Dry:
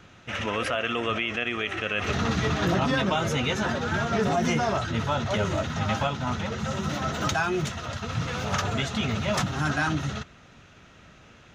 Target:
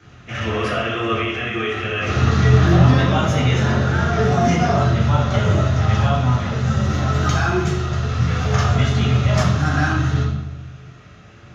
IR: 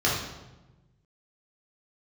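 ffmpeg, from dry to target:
-filter_complex "[1:a]atrim=start_sample=2205[a];[0:a][a]afir=irnorm=-1:irlink=0,volume=-9.5dB"

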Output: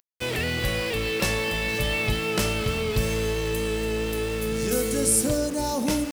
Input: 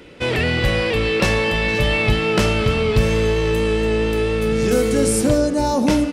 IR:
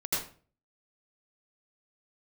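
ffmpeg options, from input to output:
-af "aemphasis=mode=production:type=50fm,aeval=exprs='val(0)*gte(abs(val(0)),0.0473)':c=same,volume=-8dB"

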